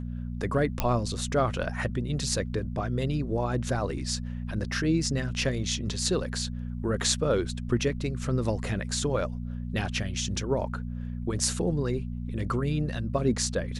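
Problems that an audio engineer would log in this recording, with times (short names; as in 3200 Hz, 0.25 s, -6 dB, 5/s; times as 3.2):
hum 60 Hz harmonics 4 -34 dBFS
0.8 pop -10 dBFS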